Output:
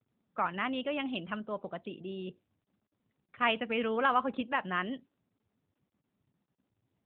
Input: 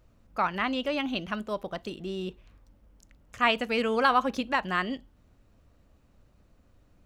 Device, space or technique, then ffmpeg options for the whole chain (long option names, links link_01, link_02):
mobile call with aggressive noise cancelling: -af "highpass=frequency=110:width=0.5412,highpass=frequency=110:width=1.3066,afftdn=noise_reduction=33:noise_floor=-50,volume=-4dB" -ar 8000 -c:a libopencore_amrnb -b:a 12200